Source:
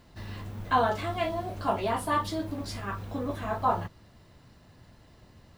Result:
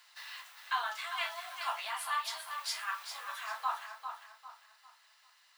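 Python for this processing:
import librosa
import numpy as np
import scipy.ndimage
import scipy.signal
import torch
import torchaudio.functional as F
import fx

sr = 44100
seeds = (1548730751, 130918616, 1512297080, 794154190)

y = scipy.signal.sosfilt(scipy.signal.bessel(6, 1600.0, 'highpass', norm='mag', fs=sr, output='sos'), x)
y = fx.rider(y, sr, range_db=3, speed_s=0.5)
y = fx.echo_feedback(y, sr, ms=399, feedback_pct=34, wet_db=-8)
y = F.gain(torch.from_numpy(y), 2.0).numpy()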